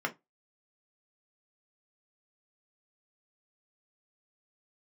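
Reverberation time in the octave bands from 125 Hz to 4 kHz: 0.25, 0.20, 0.20, 0.20, 0.15, 0.15 s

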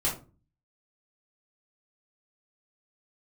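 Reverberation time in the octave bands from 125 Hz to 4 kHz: 0.65, 0.55, 0.40, 0.30, 0.25, 0.20 s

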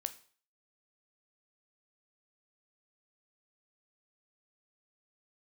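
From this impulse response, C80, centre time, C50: 20.0 dB, 5 ms, 16.0 dB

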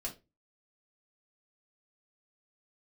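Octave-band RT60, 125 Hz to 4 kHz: 0.40, 0.35, 0.30, 0.20, 0.20, 0.20 s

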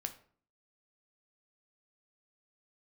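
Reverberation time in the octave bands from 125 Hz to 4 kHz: 0.60, 0.65, 0.50, 0.45, 0.40, 0.35 s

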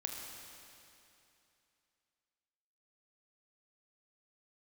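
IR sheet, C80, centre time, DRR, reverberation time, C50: 2.5 dB, 0.11 s, 0.0 dB, 2.8 s, 1.5 dB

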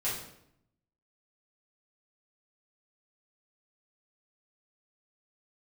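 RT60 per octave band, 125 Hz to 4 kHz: 1.1, 1.0, 0.80, 0.70, 0.65, 0.60 s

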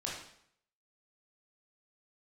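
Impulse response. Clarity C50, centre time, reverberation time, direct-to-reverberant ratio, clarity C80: 1.5 dB, 49 ms, 0.65 s, -4.5 dB, 6.0 dB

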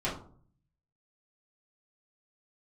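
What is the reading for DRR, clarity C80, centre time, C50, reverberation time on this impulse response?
-9.0 dB, 11.5 dB, 31 ms, 7.0 dB, 0.50 s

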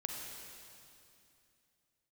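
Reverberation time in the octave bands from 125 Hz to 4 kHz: 3.4, 3.3, 2.7, 2.6, 2.6, 2.6 s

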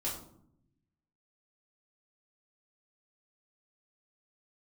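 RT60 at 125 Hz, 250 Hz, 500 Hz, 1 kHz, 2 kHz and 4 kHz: 1.4, 1.2, 0.75, 0.60, 0.40, 0.35 s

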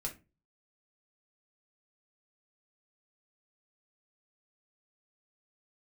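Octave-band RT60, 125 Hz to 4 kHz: 0.50, 0.40, 0.30, 0.25, 0.25, 0.20 s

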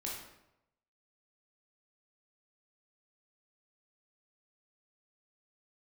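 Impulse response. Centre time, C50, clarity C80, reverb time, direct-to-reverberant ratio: 53 ms, 2.0 dB, 5.5 dB, 0.85 s, -4.0 dB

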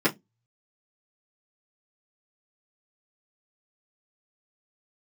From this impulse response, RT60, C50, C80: 0.15 s, 22.0 dB, 34.0 dB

